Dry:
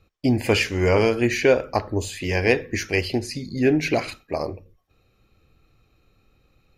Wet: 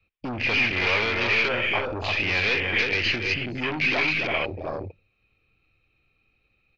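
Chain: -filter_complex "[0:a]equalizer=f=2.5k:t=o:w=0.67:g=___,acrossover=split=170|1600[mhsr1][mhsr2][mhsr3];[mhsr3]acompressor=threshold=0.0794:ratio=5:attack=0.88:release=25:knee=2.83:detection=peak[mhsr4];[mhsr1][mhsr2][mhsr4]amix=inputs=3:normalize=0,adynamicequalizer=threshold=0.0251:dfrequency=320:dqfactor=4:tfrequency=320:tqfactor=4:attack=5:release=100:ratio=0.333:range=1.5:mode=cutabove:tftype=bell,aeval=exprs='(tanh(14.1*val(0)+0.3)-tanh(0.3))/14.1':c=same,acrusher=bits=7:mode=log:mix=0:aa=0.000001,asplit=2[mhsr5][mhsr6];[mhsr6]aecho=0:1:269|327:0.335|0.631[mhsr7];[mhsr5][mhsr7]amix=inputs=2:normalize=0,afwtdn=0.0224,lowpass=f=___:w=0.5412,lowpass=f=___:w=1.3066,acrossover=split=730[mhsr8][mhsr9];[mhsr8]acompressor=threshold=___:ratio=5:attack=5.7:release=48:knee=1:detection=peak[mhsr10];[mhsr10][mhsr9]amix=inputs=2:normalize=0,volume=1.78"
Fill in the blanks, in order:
14.5, 4.9k, 4.9k, 0.0141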